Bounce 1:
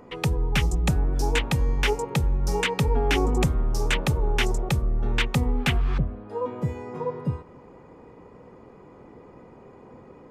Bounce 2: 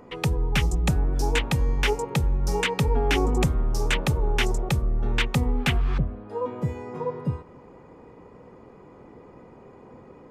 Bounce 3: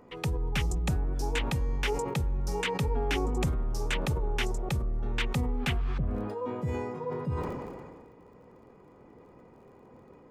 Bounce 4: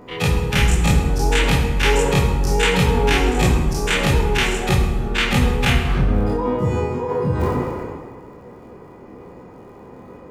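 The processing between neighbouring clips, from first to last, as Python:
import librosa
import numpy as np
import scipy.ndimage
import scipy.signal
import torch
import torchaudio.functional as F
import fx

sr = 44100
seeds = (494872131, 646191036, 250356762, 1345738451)

y1 = x
y2 = fx.dmg_crackle(y1, sr, seeds[0], per_s=36.0, level_db=-52.0)
y2 = fx.sustainer(y2, sr, db_per_s=31.0)
y2 = F.gain(torch.from_numpy(y2), -7.0).numpy()
y3 = fx.spec_dilate(y2, sr, span_ms=60)
y3 = fx.rev_plate(y3, sr, seeds[1], rt60_s=1.4, hf_ratio=0.65, predelay_ms=0, drr_db=1.5)
y3 = F.gain(torch.from_numpy(y3), 7.5).numpy()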